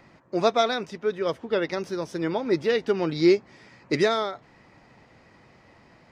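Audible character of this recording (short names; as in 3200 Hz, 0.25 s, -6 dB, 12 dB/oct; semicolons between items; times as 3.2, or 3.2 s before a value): noise floor -56 dBFS; spectral tilt -4.0 dB/oct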